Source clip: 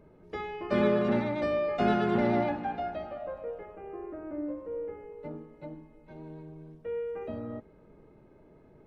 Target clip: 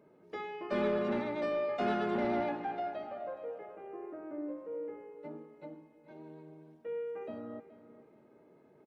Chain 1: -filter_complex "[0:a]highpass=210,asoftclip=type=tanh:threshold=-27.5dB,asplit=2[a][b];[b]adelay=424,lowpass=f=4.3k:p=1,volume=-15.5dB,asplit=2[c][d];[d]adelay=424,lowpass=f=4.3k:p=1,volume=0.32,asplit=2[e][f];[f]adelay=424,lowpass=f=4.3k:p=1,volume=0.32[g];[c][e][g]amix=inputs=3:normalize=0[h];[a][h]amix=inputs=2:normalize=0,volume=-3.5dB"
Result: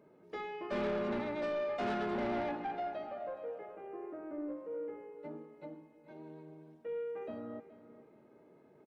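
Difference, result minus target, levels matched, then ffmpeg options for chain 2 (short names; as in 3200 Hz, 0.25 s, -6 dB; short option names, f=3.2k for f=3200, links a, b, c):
soft clip: distortion +9 dB
-filter_complex "[0:a]highpass=210,asoftclip=type=tanh:threshold=-20dB,asplit=2[a][b];[b]adelay=424,lowpass=f=4.3k:p=1,volume=-15.5dB,asplit=2[c][d];[d]adelay=424,lowpass=f=4.3k:p=1,volume=0.32,asplit=2[e][f];[f]adelay=424,lowpass=f=4.3k:p=1,volume=0.32[g];[c][e][g]amix=inputs=3:normalize=0[h];[a][h]amix=inputs=2:normalize=0,volume=-3.5dB"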